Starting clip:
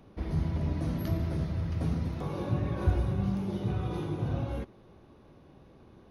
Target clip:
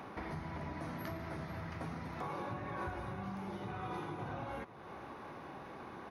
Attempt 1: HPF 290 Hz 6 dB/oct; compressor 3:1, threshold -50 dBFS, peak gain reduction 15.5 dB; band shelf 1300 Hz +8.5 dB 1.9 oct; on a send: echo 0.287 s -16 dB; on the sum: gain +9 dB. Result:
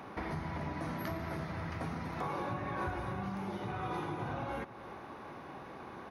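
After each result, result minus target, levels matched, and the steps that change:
echo 0.205 s early; compressor: peak gain reduction -4 dB
change: echo 0.492 s -16 dB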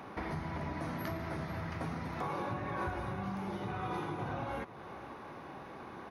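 compressor: peak gain reduction -4 dB
change: compressor 3:1, threshold -56 dBFS, peak gain reduction 19.5 dB

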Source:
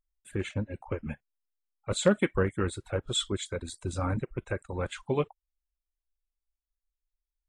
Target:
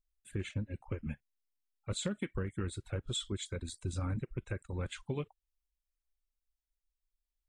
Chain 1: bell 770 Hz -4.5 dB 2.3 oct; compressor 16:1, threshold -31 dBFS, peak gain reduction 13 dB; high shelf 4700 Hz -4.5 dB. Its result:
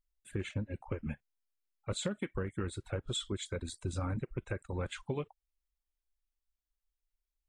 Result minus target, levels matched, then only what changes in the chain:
1000 Hz band +3.5 dB
change: bell 770 Hz -11 dB 2.3 oct

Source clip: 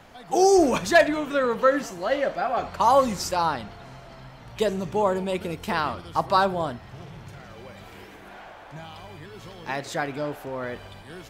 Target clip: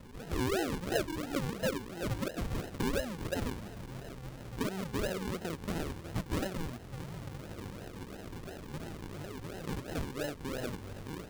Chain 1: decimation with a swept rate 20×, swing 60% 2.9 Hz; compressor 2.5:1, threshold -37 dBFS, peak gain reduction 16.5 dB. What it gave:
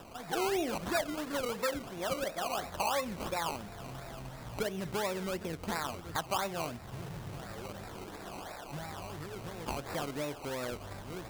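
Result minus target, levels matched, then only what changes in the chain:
decimation with a swept rate: distortion -22 dB
change: decimation with a swept rate 54×, swing 60% 2.9 Hz

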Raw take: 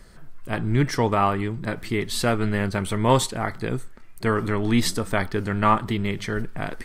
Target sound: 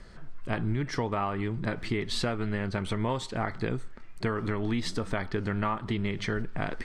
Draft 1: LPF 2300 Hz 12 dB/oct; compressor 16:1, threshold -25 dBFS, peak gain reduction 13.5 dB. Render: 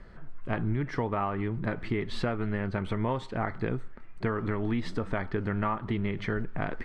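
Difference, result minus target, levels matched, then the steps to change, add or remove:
4000 Hz band -7.5 dB
change: LPF 5400 Hz 12 dB/oct

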